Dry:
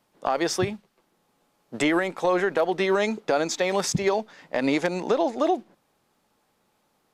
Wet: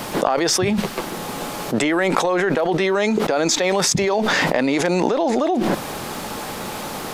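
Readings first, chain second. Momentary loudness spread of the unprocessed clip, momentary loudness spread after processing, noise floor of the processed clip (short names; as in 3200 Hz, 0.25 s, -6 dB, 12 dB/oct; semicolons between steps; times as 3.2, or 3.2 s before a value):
7 LU, 11 LU, -30 dBFS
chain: fast leveller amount 100%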